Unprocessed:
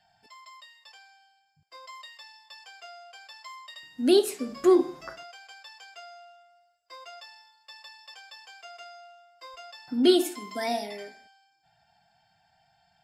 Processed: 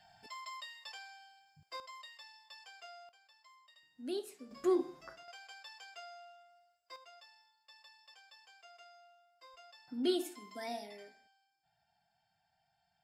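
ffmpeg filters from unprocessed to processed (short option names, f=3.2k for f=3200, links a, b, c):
-af "asetnsamples=n=441:p=0,asendcmd='1.8 volume volume -6.5dB;3.09 volume volume -19dB;4.51 volume volume -11dB;5.28 volume volume -4.5dB;6.96 volume volume -12.5dB',volume=3dB"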